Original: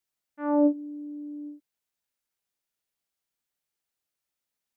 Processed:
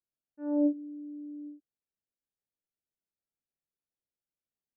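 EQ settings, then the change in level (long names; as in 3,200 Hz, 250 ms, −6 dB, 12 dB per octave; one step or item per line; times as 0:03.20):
moving average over 41 samples
−3.0 dB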